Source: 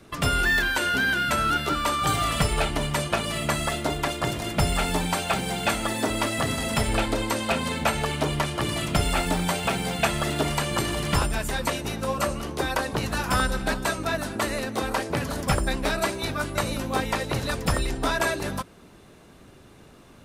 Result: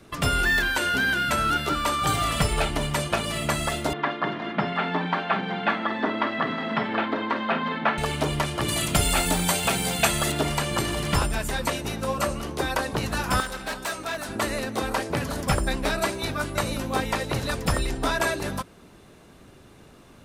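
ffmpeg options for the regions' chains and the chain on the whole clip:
-filter_complex "[0:a]asettb=1/sr,asplit=3[a][b][c];[a]atrim=end=3.934[d];[b]atrim=start=3.93:end=7.98,asetpts=PTS-STARTPTS,afade=t=in:d=0.004:c=qsin,afade=t=out:st=4.046:d=0.004:c=qsin,highpass=f=180:w=0.5412,highpass=f=180:w=1.3066,equalizer=f=200:t=q:w=4:g=4,equalizer=f=530:t=q:w=4:g=-4,equalizer=f=1.1k:t=q:w=4:g=5,equalizer=f=1.7k:t=q:w=4:g=5,equalizer=f=2.6k:t=q:w=4:g=-5,lowpass=f=3.2k:w=0.5412,lowpass=f=3.2k:w=1.3066,asplit=2[e][f];[f]adelay=47,volume=-12.5dB[g];[e][g]amix=inputs=2:normalize=0,atrim=end_sample=178605[h];[c]atrim=start=7.976[i];[d][h]acrossfade=d=0.004:c1=hsin:c2=qsin[j];[j][i]acrossfade=d=0.004:c1=qsin:c2=hsin,asettb=1/sr,asplit=3[k][l][m];[k]atrim=end=8.684[n];[l]atrim=start=8.68:end=10.32,asetpts=PTS-STARTPTS,afade=t=in:d=0.004:c=qsin,afade=t=out:st=1.636:d=0.004:c=qsin,highshelf=f=4.4k:g=10,bandreject=f=5.3k:w=21[o];[m]atrim=start=10.316[p];[n][o]acrossfade=d=0.004:c1=hsin:c2=qsin[q];[q][p]acrossfade=d=0.004:c1=qsin:c2=hsin,asettb=1/sr,asplit=3[r][s][t];[r]atrim=end=13.404[u];[s]atrim=start=13.4:end=14.29,asetpts=PTS-STARTPTS,afade=t=in:d=0.004:c=qsin,afade=t=out:st=0.886:d=0.004:c=qsin,asoftclip=type=hard:threshold=-24dB,lowshelf=f=300:g=-12[v];[t]atrim=start=14.286[w];[u][v]acrossfade=d=0.004:c1=hsin:c2=qsin[x];[x][w]acrossfade=d=0.004:c1=qsin:c2=hsin"

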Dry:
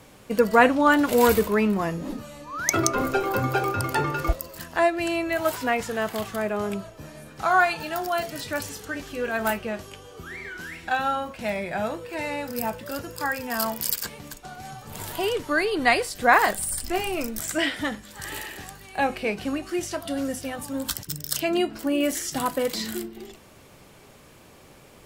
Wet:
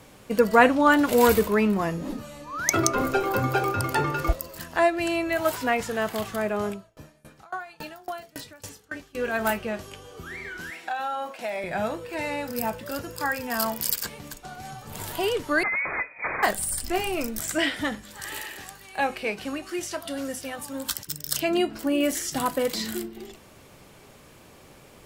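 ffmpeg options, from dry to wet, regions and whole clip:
-filter_complex "[0:a]asettb=1/sr,asplit=3[a][b][c];[a]atrim=end=6.694[d];[b]atrim=start=6.69:end=9.15,asetpts=PTS-STARTPTS,afade=t=in:d=0.004:c=qsin,afade=t=out:st=2.456:d=0.004:c=qsin,acompressor=threshold=-25dB:ratio=6:attack=3.2:release=140:knee=1:detection=peak,aeval=exprs='val(0)*pow(10,-26*if(lt(mod(3.6*n/s,1),2*abs(3.6)/1000),1-mod(3.6*n/s,1)/(2*abs(3.6)/1000),(mod(3.6*n/s,1)-2*abs(3.6)/1000)/(1-2*abs(3.6)/1000))/20)':c=same[e];[c]atrim=start=9.146[f];[d][e]acrossfade=d=0.004:c1=hsin:c2=qsin[g];[g][f]acrossfade=d=0.004:c1=qsin:c2=hsin,asettb=1/sr,asplit=3[h][i][j];[h]atrim=end=10.704[k];[i]atrim=start=10.7:end=11.64,asetpts=PTS-STARTPTS,afade=t=in:d=0.004:c=qsin,afade=t=out:st=0.936:d=0.004:c=qsin,highpass=370,equalizer=f=720:t=o:w=0.41:g=6,acompressor=threshold=-26dB:ratio=5:attack=3.2:release=140:knee=1:detection=peak[l];[j]atrim=start=11.636[m];[k][l]acrossfade=d=0.004:c1=hsin:c2=qsin[n];[n][m]acrossfade=d=0.004:c1=qsin:c2=hsin,asettb=1/sr,asplit=3[o][p][q];[o]atrim=end=15.634[r];[p]atrim=start=15.63:end=16.43,asetpts=PTS-STARTPTS,afade=t=in:d=0.004:c=qsin,afade=t=out:st=0.796:d=0.004:c=qsin,aeval=exprs='(mod(9.44*val(0)+1,2)-1)/9.44':c=same,lowpass=f=2.1k:t=q:w=0.5098,lowpass=f=2.1k:t=q:w=0.6013,lowpass=f=2.1k:t=q:w=0.9,lowpass=f=2.1k:t=q:w=2.563,afreqshift=-2500[s];[q]atrim=start=16.426[t];[r][s]acrossfade=d=0.004:c1=hsin:c2=qsin[u];[u][t]acrossfade=d=0.004:c1=qsin:c2=hsin,asettb=1/sr,asplit=3[v][w][x];[v]atrim=end=18.174[y];[w]atrim=start=18.17:end=21.27,asetpts=PTS-STARTPTS,afade=t=in:d=0.004:c=qsin,afade=t=out:st=3.096:d=0.004:c=qsin,lowshelf=f=330:g=-8,bandreject=f=720:w=20[z];[x]atrim=start=21.266[aa];[y][z]acrossfade=d=0.004:c1=hsin:c2=qsin[ab];[ab][aa]acrossfade=d=0.004:c1=qsin:c2=hsin"

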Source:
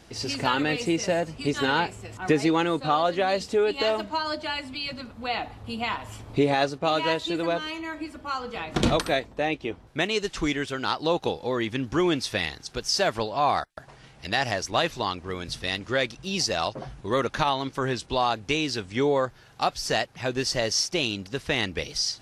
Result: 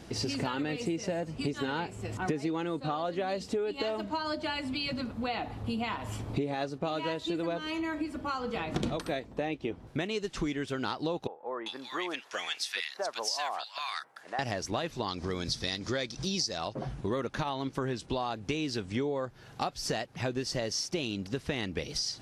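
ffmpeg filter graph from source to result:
-filter_complex "[0:a]asettb=1/sr,asplit=3[a][b][c];[a]atrim=end=11.274[d];[b]atrim=start=11.27:end=14.39,asetpts=PTS-STARTPTS,afade=t=in:d=0.004:c=qsin,afade=t=out:st=3.116:d=0.004:c=qsin,highpass=960,acrossover=split=1300[e][f];[f]adelay=390[g];[e][g]amix=inputs=2:normalize=0,atrim=end_sample=137592[h];[c]atrim=start=14.386[i];[d][h]acrossfade=d=0.004:c1=hsin:c2=qsin[j];[j][i]acrossfade=d=0.004:c1=qsin:c2=hsin,asettb=1/sr,asplit=3[k][l][m];[k]atrim=end=15.084[n];[l]atrim=start=15.08:end=16.58,asetpts=PTS-STARTPTS,afade=t=in:d=0.004:c=qsin,afade=t=out:st=1.496:d=0.004:c=qsin,equalizer=f=5.2k:w=1.1:g=11.5,bandreject=f=2.8k:w=8.9,acompressor=mode=upward:threshold=-28dB:ratio=2.5:attack=3.2:release=140:knee=2.83:detection=peak[o];[m]atrim=start=16.576[p];[n][o]acrossfade=d=0.004:c1=hsin:c2=qsin[q];[q][p]acrossfade=d=0.004:c1=qsin:c2=hsin,equalizer=f=210:w=0.43:g=6.5,acompressor=threshold=-30dB:ratio=6"

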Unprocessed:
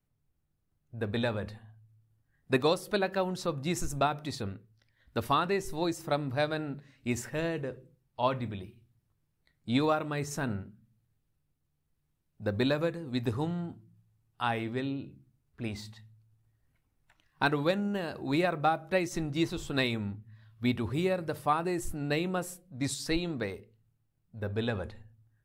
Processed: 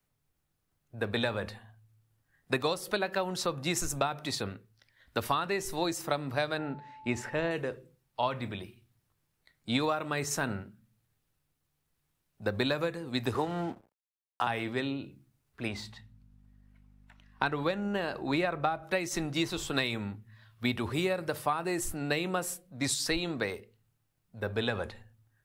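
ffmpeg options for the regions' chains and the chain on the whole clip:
-filter_complex "[0:a]asettb=1/sr,asplit=3[a][b][c];[a]atrim=end=6.584[d];[b]atrim=start=6.58:end=7.51,asetpts=PTS-STARTPTS,afade=t=in:d=0.004:c=qsin,afade=t=out:st=0.926:d=0.004:c=qsin,aemphasis=mode=reproduction:type=75fm,aeval=exprs='val(0)+0.00224*sin(2*PI*870*n/s)':c=same[e];[c]atrim=start=7.506[f];[d][e]acrossfade=d=0.004:c1=hsin:c2=qsin[g];[g][f]acrossfade=d=0.004:c1=qsin:c2=hsin,asettb=1/sr,asplit=3[h][i][j];[h]atrim=end=13.344[k];[i]atrim=start=13.34:end=14.47,asetpts=PTS-STARTPTS,afade=t=in:d=0.004:c=qsin,afade=t=out:st=1.126:d=0.004:c=qsin,equalizer=f=520:t=o:w=2.9:g=9.5,acrossover=split=160|730[l][m][n];[l]acompressor=threshold=-45dB:ratio=4[o];[m]acompressor=threshold=-29dB:ratio=4[p];[n]acompressor=threshold=-34dB:ratio=4[q];[o][p][q]amix=inputs=3:normalize=0,aeval=exprs='sgn(val(0))*max(abs(val(0))-0.00266,0)':c=same[r];[j]atrim=start=14.466[s];[k][r]acrossfade=d=0.004:c1=hsin:c2=qsin[t];[t][s]acrossfade=d=0.004:c1=qsin:c2=hsin,asettb=1/sr,asplit=3[u][v][w];[u]atrim=end=15.684[x];[v]atrim=start=15.68:end=18.83,asetpts=PTS-STARTPTS,afade=t=in:d=0.004:c=qsin,afade=t=out:st=3.146:d=0.004:c=qsin,aemphasis=mode=reproduction:type=cd,aeval=exprs='val(0)+0.00178*(sin(2*PI*50*n/s)+sin(2*PI*2*50*n/s)/2+sin(2*PI*3*50*n/s)/3+sin(2*PI*4*50*n/s)/4+sin(2*PI*5*50*n/s)/5)':c=same[y];[w]atrim=start=18.826[z];[x][y]acrossfade=d=0.004:c1=hsin:c2=qsin[aa];[aa][z]acrossfade=d=0.004:c1=qsin:c2=hsin,lowshelf=f=380:g=-10.5,acrossover=split=150[ab][ac];[ac]acompressor=threshold=-33dB:ratio=6[ad];[ab][ad]amix=inputs=2:normalize=0,volume=7dB"

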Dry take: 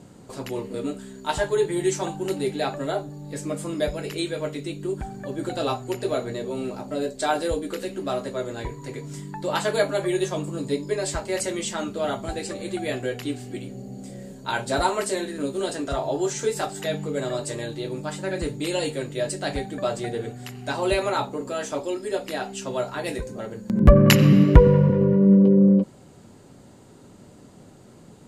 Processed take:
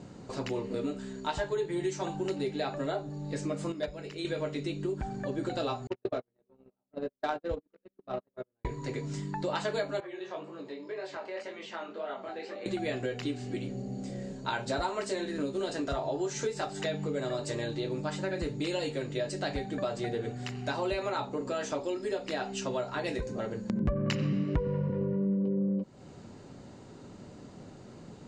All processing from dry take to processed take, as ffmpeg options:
-filter_complex "[0:a]asettb=1/sr,asplit=3[a][b][c];[a]atrim=end=3.724[d];[b]atrim=start=3.72:end=4.25,asetpts=PTS-STARTPTS,afade=t=in:d=0.004:c=qsin,afade=t=out:st=0.526:d=0.004:c=qsin,agate=range=-10dB:threshold=-22dB:ratio=16:release=100:detection=peak,asoftclip=type=hard:threshold=-21dB[e];[c]atrim=start=4.246[f];[d][e]acrossfade=d=0.004:c1=hsin:c2=qsin[g];[g][f]acrossfade=d=0.004:c1=qsin:c2=hsin,asettb=1/sr,asplit=3[h][i][j];[h]atrim=end=5.874[k];[i]atrim=start=5.87:end=8.65,asetpts=PTS-STARTPTS,afade=t=in:d=0.004:c=qsin,afade=t=out:st=2.776:d=0.004:c=qsin,agate=range=-51dB:threshold=-25dB:ratio=16:release=100:detection=peak,adynamicsmooth=sensitivity=2.5:basefreq=2k[l];[j]atrim=start=8.646[m];[k][l]acrossfade=d=0.004:c1=hsin:c2=qsin[n];[n][m]acrossfade=d=0.004:c1=qsin:c2=hsin,asettb=1/sr,asplit=3[o][p][q];[o]atrim=end=10.004[r];[p]atrim=start=10:end=12.66,asetpts=PTS-STARTPTS,afade=t=in:d=0.004:c=qsin,afade=t=out:st=2.656:d=0.004:c=qsin,acompressor=threshold=-29dB:ratio=4:attack=3.2:release=140:knee=1:detection=peak,flanger=delay=18.5:depth=6.5:speed=1.9,highpass=420,lowpass=2.9k[s];[q]atrim=start=12.656[t];[r][s]acrossfade=d=0.004:c1=hsin:c2=qsin[u];[u][t]acrossfade=d=0.004:c1=qsin:c2=hsin,lowpass=f=6.6k:w=0.5412,lowpass=f=6.6k:w=1.3066,bandreject=f=3.3k:w=22,acompressor=threshold=-30dB:ratio=4"

